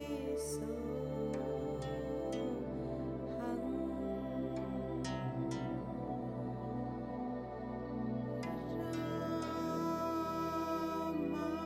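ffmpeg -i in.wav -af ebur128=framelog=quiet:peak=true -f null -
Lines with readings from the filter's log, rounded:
Integrated loudness:
  I:         -39.6 LUFS
  Threshold: -49.6 LUFS
Loudness range:
  LRA:         2.8 LU
  Threshold: -60.0 LUFS
  LRA low:   -41.1 LUFS
  LRA high:  -38.3 LUFS
True peak:
  Peak:      -27.1 dBFS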